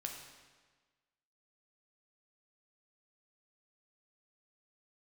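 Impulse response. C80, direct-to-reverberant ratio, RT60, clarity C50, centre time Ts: 6.0 dB, 1.5 dB, 1.4 s, 4.5 dB, 44 ms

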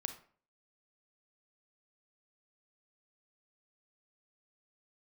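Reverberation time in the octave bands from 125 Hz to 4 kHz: 0.50, 0.50, 0.50, 0.45, 0.40, 0.30 seconds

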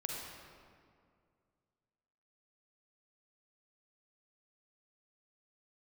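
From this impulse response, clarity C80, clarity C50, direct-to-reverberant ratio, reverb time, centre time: 1.5 dB, −0.5 dB, −1.5 dB, 2.2 s, 105 ms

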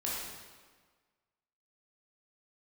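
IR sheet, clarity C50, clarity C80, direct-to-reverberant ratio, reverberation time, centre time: −1.5 dB, 1.5 dB, −6.5 dB, 1.5 s, 94 ms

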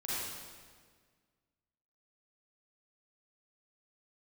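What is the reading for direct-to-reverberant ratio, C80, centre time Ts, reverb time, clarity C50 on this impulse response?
−10.0 dB, −2.5 dB, 131 ms, 1.7 s, −6.0 dB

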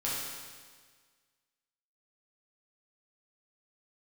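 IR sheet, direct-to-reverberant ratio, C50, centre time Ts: −7.5 dB, −1.5 dB, 106 ms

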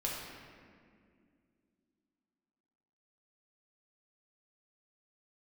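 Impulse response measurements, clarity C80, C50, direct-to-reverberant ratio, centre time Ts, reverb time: 2.0 dB, 0.0 dB, −4.0 dB, 97 ms, 2.2 s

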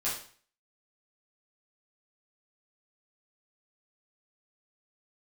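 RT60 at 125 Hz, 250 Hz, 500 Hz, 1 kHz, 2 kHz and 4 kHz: 0.50, 0.45, 0.45, 0.45, 0.45, 0.45 seconds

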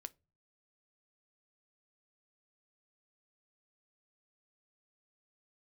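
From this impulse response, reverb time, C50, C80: non-exponential decay, 26.0 dB, 34.0 dB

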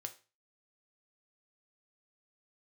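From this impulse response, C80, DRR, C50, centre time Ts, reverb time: 20.5 dB, 5.5 dB, 15.0 dB, 6 ms, 0.35 s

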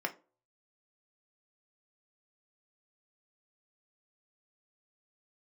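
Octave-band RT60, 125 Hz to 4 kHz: 0.35, 0.35, 0.40, 0.30, 0.25, 0.20 seconds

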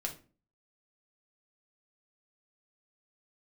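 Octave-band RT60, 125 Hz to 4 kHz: 0.55, 0.50, 0.40, 0.30, 0.30, 0.25 seconds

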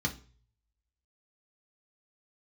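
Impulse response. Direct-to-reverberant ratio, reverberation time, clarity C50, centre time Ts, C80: 0.5 dB, 0.40 s, 15.0 dB, 9 ms, 21.0 dB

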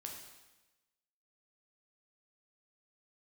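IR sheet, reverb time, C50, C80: 1.1 s, 4.0 dB, 6.5 dB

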